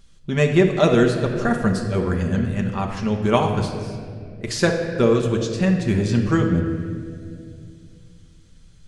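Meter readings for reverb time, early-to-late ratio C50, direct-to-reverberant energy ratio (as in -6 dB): 2.4 s, 5.5 dB, 1.0 dB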